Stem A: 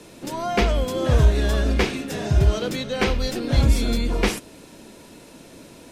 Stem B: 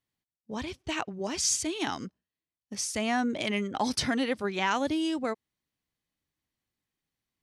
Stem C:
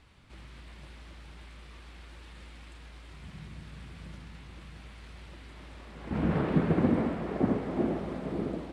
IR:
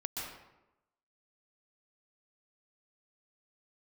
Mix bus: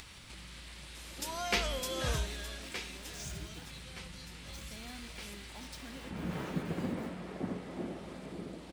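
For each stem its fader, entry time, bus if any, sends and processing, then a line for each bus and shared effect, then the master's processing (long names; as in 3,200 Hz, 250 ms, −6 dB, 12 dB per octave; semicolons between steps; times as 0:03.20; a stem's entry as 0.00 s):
0:02.13 −3 dB → 0:02.41 −13 dB → 0:03.31 −13 dB → 0:03.60 −21.5 dB, 0.95 s, no send, tilt shelving filter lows −5 dB, about 750 Hz
−12.0 dB, 1.75 s, no send, parametric band 170 Hz +7 dB 2.4 octaves; flanger 0.26 Hz, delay 1.6 ms, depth 6.1 ms, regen +87%; centre clipping without the shift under −33 dBFS
−1.5 dB, 0.00 s, no send, upward compression, threshold −30 dBFS; high-shelf EQ 3,100 Hz +8.5 dB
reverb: not used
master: high-shelf EQ 2,500 Hz +7.5 dB; tuned comb filter 180 Hz, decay 0.62 s, harmonics odd, mix 70%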